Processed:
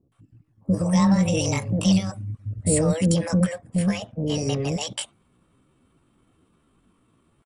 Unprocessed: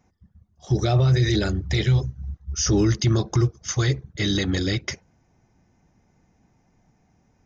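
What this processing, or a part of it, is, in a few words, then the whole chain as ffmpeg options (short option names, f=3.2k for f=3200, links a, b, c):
chipmunk voice: -filter_complex "[0:a]asetrate=66075,aresample=44100,atempo=0.66742,asettb=1/sr,asplit=3[a][b][c];[a]atrim=end=3.434[d];[b]atrim=start=3.43:end=4.69,asetpts=PTS-STARTPTS,afade=t=in:d=0.004:c=qsin,afade=t=out:st=1.256:d=0.004:c=qsin,highshelf=f=3.9k:g=-10.5[e];[c]atrim=start=4.686[f];[d][e]acrossfade=d=0.004:c1=hsin:c2=qsin[g];[g][f]acrossfade=d=0.004:c1=qsin:c2=hsin,acrossover=split=570[h][i];[i]adelay=120[j];[h][j]amix=inputs=2:normalize=0"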